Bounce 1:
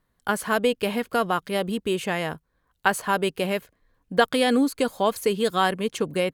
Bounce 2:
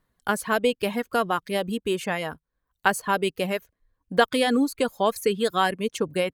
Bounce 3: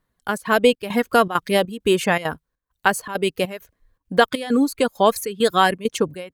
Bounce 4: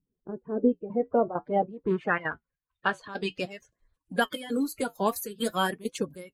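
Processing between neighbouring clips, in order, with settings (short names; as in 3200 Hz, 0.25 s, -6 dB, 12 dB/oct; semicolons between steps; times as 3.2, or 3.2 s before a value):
reverb removal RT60 0.83 s
AGC gain up to 11.5 dB; step gate "xxxxx.xxxx.." 200 bpm -12 dB; gain -1 dB
bin magnitudes rounded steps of 30 dB; flange 0.5 Hz, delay 4.4 ms, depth 5.4 ms, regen -61%; low-pass sweep 360 Hz -> 13000 Hz, 0.71–4.32; gain -5.5 dB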